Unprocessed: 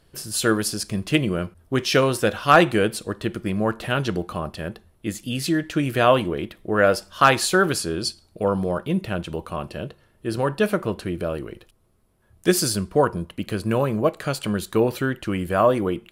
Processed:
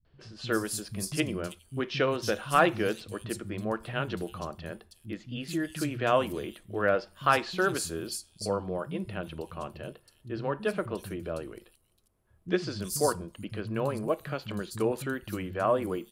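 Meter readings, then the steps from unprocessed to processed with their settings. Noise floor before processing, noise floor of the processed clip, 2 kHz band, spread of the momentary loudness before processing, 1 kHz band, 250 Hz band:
-60 dBFS, -66 dBFS, -8.0 dB, 13 LU, -8.0 dB, -9.5 dB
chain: three bands offset in time lows, mids, highs 50/370 ms, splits 180/4500 Hz; gain -8 dB

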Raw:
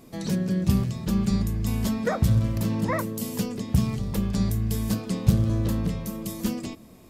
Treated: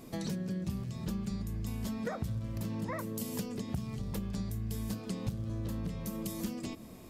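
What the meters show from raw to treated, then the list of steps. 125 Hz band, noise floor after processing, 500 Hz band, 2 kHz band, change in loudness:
-12.5 dB, -49 dBFS, -10.0 dB, -10.5 dB, -11.5 dB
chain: compressor 6:1, threshold -34 dBFS, peak gain reduction 20 dB

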